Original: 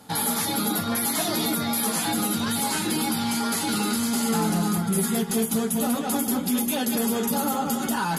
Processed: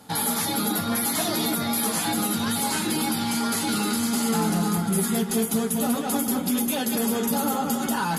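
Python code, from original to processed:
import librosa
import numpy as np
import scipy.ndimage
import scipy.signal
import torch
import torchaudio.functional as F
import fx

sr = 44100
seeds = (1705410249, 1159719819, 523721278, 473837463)

y = x + fx.echo_alternate(x, sr, ms=331, hz=2300.0, feedback_pct=50, wet_db=-13, dry=0)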